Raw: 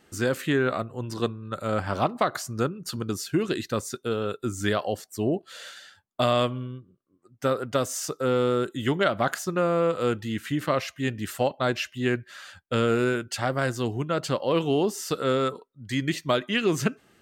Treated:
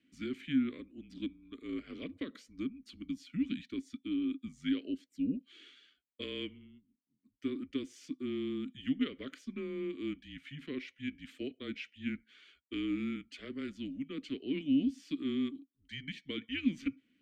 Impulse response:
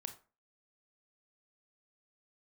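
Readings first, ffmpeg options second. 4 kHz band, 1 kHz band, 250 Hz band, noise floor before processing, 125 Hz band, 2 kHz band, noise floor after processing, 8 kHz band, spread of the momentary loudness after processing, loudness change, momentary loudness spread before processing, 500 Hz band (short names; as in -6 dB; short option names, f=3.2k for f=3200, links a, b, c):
-12.0 dB, -30.5 dB, -5.5 dB, -65 dBFS, -19.5 dB, -15.5 dB, -79 dBFS, under -25 dB, 11 LU, -11.5 dB, 8 LU, -20.0 dB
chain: -filter_complex "[0:a]afreqshift=-150,asplit=3[a][b][c];[a]bandpass=f=270:t=q:w=8,volume=0dB[d];[b]bandpass=f=2.29k:t=q:w=8,volume=-6dB[e];[c]bandpass=f=3.01k:t=q:w=8,volume=-9dB[f];[d][e][f]amix=inputs=3:normalize=0"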